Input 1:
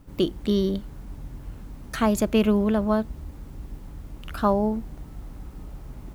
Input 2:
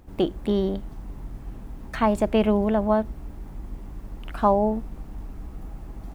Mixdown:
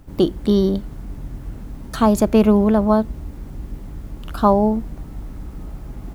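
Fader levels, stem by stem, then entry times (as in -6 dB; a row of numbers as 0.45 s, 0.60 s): +3.0 dB, -1.0 dB; 0.00 s, 0.00 s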